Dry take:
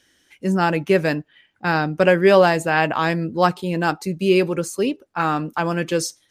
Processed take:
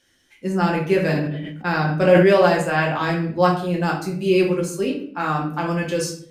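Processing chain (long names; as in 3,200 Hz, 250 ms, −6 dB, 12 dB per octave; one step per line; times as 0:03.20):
rectangular room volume 74 cubic metres, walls mixed, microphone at 0.86 metres
0:01.02–0:02.29: level that may fall only so fast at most 35 dB per second
level −5 dB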